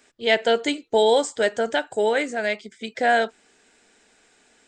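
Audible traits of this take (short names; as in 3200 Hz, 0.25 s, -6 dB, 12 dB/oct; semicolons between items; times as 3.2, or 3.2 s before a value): noise floor -60 dBFS; spectral tilt -2.5 dB/oct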